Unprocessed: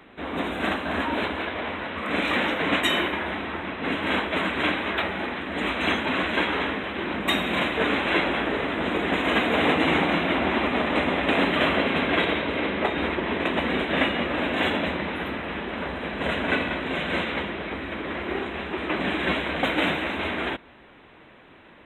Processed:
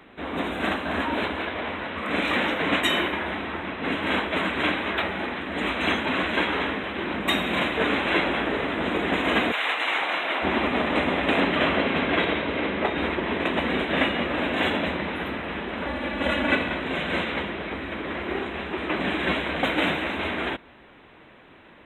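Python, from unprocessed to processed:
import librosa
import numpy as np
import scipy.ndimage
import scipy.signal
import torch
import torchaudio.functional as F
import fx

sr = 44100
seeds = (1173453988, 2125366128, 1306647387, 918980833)

y = fx.highpass(x, sr, hz=fx.line((9.51, 1200.0), (10.42, 540.0)), slope=12, at=(9.51, 10.42), fade=0.02)
y = fx.air_absorb(y, sr, metres=56.0, at=(11.4, 12.96))
y = fx.comb(y, sr, ms=3.5, depth=0.71, at=(15.86, 16.55))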